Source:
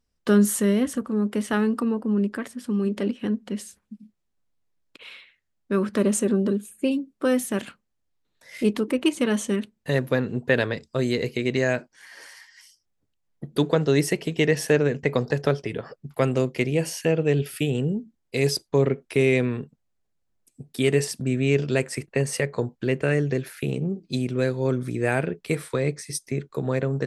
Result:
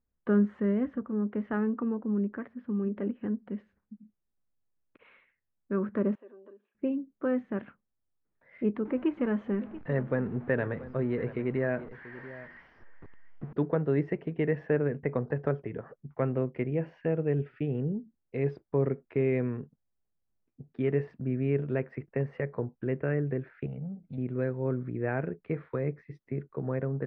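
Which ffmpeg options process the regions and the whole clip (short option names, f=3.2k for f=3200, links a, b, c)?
-filter_complex "[0:a]asettb=1/sr,asplit=3[a][b][c];[a]atrim=end=6.154[d];[b]atrim=start=6.15:end=6.75,asetpts=PTS-STARTPTS,afade=t=in:d=0.004:c=qsin,afade=t=out:st=0.596:d=0.004:c=qsin,acompressor=threshold=-37dB:ratio=2:attack=3.2:release=140:knee=1:detection=peak,highpass=f=430:w=0.5412,highpass=f=430:w=1.3066,equalizer=f=470:t=q:w=4:g=-9,equalizer=f=780:t=q:w=4:g=-4,equalizer=f=1.4k:t=q:w=4:g=-9,equalizer=f=2.1k:t=q:w=4:g=-7,lowpass=f=4k:w=0.5412,lowpass=f=4k:w=1.3066[e];[c]atrim=start=6.746[f];[d][e]acrossfade=d=0.004:c1=hsin:c2=qsin[g];[g][f]acrossfade=d=0.004:c1=qsin:c2=hsin,asettb=1/sr,asplit=3[h][i][j];[h]atrim=end=8.854[k];[i]atrim=start=8.85:end=13.53,asetpts=PTS-STARTPTS,afade=t=in:d=0.004:c=qsin,afade=t=out:st=4.676:d=0.004:c=qsin,aeval=exprs='val(0)+0.5*0.02*sgn(val(0))':c=same,aecho=1:1:685:0.158,atrim=end_sample=206388[l];[j]atrim=start=13.526[m];[k][l]acrossfade=d=0.004:c1=hsin:c2=qsin[n];[n][m]acrossfade=d=0.004:c1=qsin:c2=hsin,asettb=1/sr,asplit=3[o][p][q];[o]atrim=end=23.664[r];[p]atrim=start=23.66:end=24.18,asetpts=PTS-STARTPTS,afade=t=in:d=0.004:c=qsin,afade=t=out:st=0.516:d=0.004:c=qsin,aecho=1:1:1.4:0.98,atrim=end_sample=22932,acompressor=threshold=-34dB:ratio=2:attack=3.2:release=140:knee=1:detection=peak[s];[q]atrim=start=24.176[t];[r][s]acrossfade=d=0.004:c1=hsin:c2=qsin[u];[u][t]acrossfade=d=0.004:c1=qsin:c2=hsin,lowpass=f=1.9k:w=0.5412,lowpass=f=1.9k:w=1.3066,lowshelf=f=390:g=3,volume=-8.5dB"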